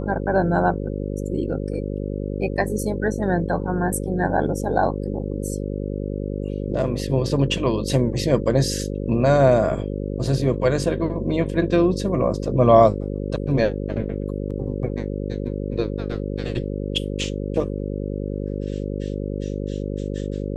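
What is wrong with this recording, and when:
buzz 50 Hz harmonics 11 -27 dBFS

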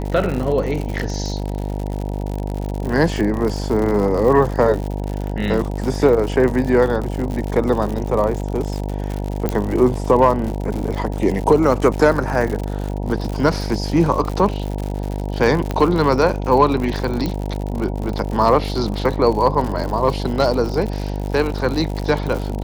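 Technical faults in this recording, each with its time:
buzz 50 Hz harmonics 19 -24 dBFS
crackle 100 per s -24 dBFS
9.49 s: pop -7 dBFS
15.71 s: pop -9 dBFS
17.26 s: pop -10 dBFS

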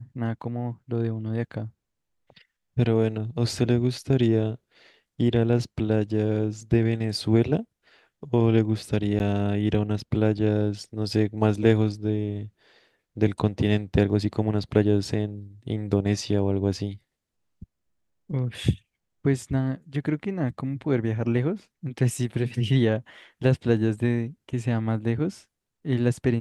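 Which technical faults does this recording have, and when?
9.19–9.20 s: dropout 9.3 ms

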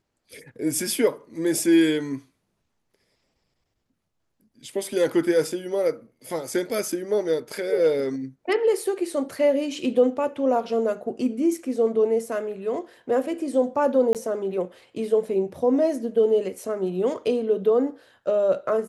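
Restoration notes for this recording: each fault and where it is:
14.13–14.15 s: dropout 18 ms

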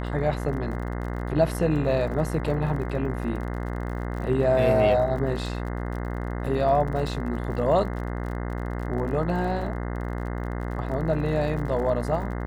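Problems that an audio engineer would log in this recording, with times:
buzz 60 Hz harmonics 35 -30 dBFS
crackle 46 per s -35 dBFS

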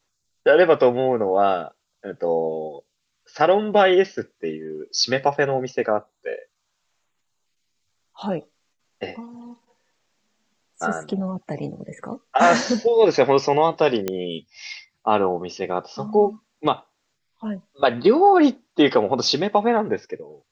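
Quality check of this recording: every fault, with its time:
14.08 s: pop -10 dBFS

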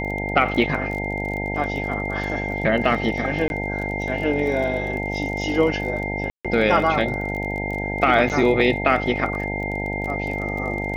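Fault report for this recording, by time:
buzz 50 Hz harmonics 18 -28 dBFS
crackle 25 per s -29 dBFS
whine 2.1 kHz -28 dBFS
3.48–3.50 s: dropout 21 ms
6.30–6.45 s: dropout 146 ms
8.29–8.30 s: dropout 8.4 ms

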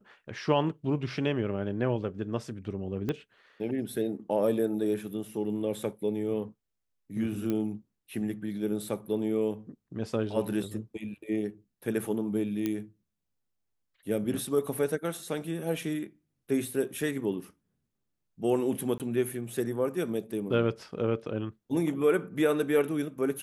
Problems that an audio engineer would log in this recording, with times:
3.09 s: pop -19 dBFS
7.50 s: pop -19 dBFS
12.66 s: pop -17 dBFS
18.98–19.00 s: dropout 18 ms

